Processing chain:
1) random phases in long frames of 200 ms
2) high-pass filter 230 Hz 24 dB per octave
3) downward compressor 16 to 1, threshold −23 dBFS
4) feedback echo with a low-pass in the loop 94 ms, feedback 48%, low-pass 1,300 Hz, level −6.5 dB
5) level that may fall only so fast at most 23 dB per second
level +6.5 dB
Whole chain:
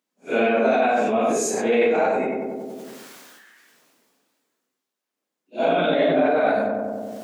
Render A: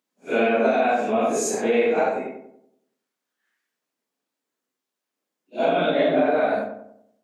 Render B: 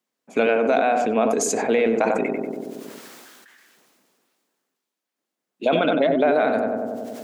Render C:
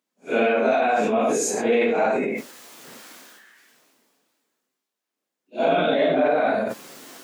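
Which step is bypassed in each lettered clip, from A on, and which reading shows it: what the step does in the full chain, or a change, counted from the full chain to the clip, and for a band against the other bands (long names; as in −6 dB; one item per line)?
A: 5, change in momentary loudness spread −5 LU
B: 1, 8 kHz band +2.0 dB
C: 4, change in momentary loudness spread −1 LU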